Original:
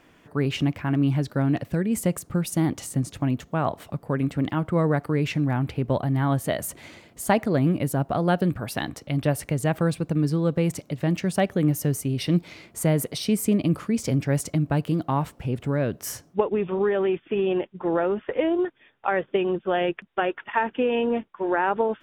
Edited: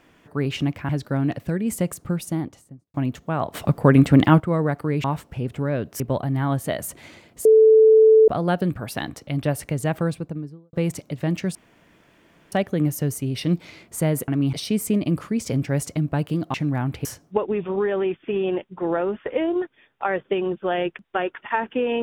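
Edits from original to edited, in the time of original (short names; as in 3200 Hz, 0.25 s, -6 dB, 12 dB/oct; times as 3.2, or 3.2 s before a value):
0.89–1.14 move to 13.11
2.29–3.19 studio fade out
3.79–4.65 gain +11 dB
5.29–5.8 swap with 15.12–16.08
7.25–8.08 bleep 439 Hz -9 dBFS
9.73–10.53 studio fade out
11.35 insert room tone 0.97 s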